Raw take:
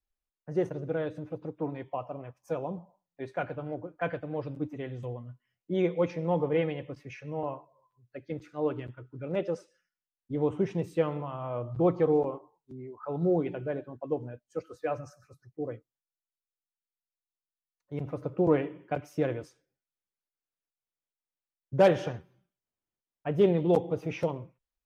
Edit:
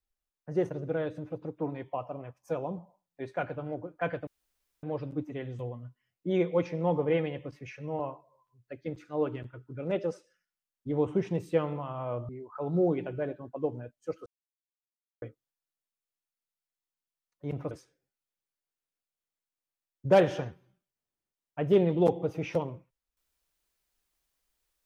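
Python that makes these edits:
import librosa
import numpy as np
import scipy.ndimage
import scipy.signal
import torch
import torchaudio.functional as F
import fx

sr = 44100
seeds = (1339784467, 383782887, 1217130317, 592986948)

y = fx.edit(x, sr, fx.insert_room_tone(at_s=4.27, length_s=0.56),
    fx.cut(start_s=11.73, length_s=1.04),
    fx.silence(start_s=14.74, length_s=0.96),
    fx.cut(start_s=18.19, length_s=1.2), tone=tone)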